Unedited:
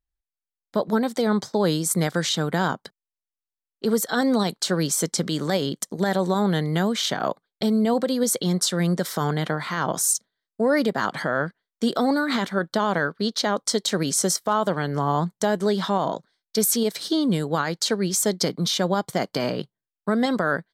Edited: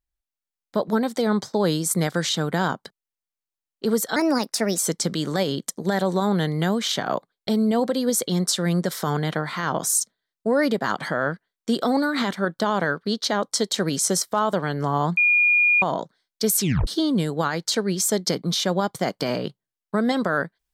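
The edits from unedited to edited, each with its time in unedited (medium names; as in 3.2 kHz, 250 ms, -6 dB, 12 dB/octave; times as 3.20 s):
4.16–4.93 s: speed 122%
15.31–15.96 s: bleep 2.43 kHz -14.5 dBFS
16.73 s: tape stop 0.28 s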